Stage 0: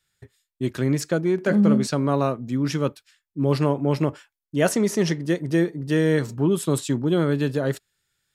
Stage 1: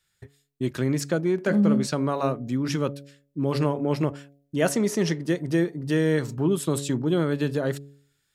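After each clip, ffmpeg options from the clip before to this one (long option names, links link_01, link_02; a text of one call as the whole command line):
ffmpeg -i in.wav -filter_complex "[0:a]bandreject=frequency=140.9:width_type=h:width=4,bandreject=frequency=281.8:width_type=h:width=4,bandreject=frequency=422.7:width_type=h:width=4,bandreject=frequency=563.6:width_type=h:width=4,bandreject=frequency=704.5:width_type=h:width=4,asplit=2[link_01][link_02];[link_02]acompressor=threshold=-28dB:ratio=6,volume=-2dB[link_03];[link_01][link_03]amix=inputs=2:normalize=0,volume=-4dB" out.wav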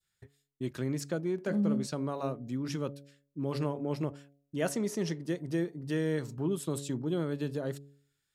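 ffmpeg -i in.wav -af "adynamicequalizer=threshold=0.00794:dfrequency=1800:dqfactor=0.86:tfrequency=1800:tqfactor=0.86:attack=5:release=100:ratio=0.375:range=2.5:mode=cutabove:tftype=bell,volume=-8.5dB" out.wav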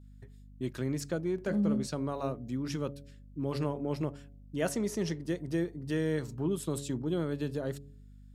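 ffmpeg -i in.wav -af "aeval=exprs='val(0)+0.00282*(sin(2*PI*50*n/s)+sin(2*PI*2*50*n/s)/2+sin(2*PI*3*50*n/s)/3+sin(2*PI*4*50*n/s)/4+sin(2*PI*5*50*n/s)/5)':channel_layout=same" out.wav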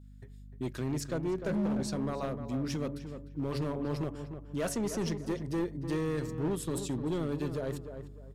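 ffmpeg -i in.wav -filter_complex "[0:a]asoftclip=type=hard:threshold=-29dB,asplit=2[link_01][link_02];[link_02]adelay=301,lowpass=frequency=1700:poles=1,volume=-8.5dB,asplit=2[link_03][link_04];[link_04]adelay=301,lowpass=frequency=1700:poles=1,volume=0.29,asplit=2[link_05][link_06];[link_06]adelay=301,lowpass=frequency=1700:poles=1,volume=0.29[link_07];[link_01][link_03][link_05][link_07]amix=inputs=4:normalize=0,volume=1dB" out.wav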